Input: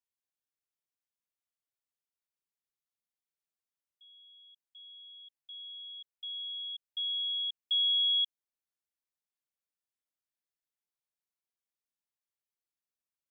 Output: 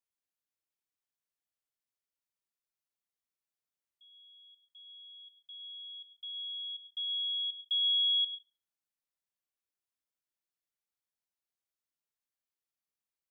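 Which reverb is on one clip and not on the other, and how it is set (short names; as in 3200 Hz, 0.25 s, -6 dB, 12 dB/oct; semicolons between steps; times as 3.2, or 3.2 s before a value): digital reverb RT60 0.43 s, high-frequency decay 0.7×, pre-delay 60 ms, DRR 13 dB; gain -2 dB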